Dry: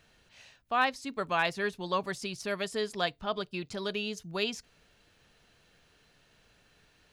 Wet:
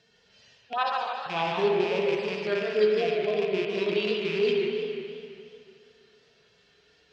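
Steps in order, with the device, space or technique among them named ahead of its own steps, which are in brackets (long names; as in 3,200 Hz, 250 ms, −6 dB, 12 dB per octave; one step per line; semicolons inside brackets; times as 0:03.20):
harmonic-percussive split with one part muted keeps harmonic
0:00.73–0:01.26: inverse Chebyshev high-pass filter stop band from 270 Hz, stop band 40 dB
car door speaker with a rattle (loose part that buzzes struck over −47 dBFS, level −27 dBFS; loudspeaker in its box 86–7,300 Hz, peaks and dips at 420 Hz +9 dB, 3,300 Hz +5 dB, 5,100 Hz +10 dB)
spring reverb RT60 2.4 s, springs 42/47 ms, chirp 40 ms, DRR 0.5 dB
feedback echo with a swinging delay time 149 ms, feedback 54%, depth 177 cents, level −6.5 dB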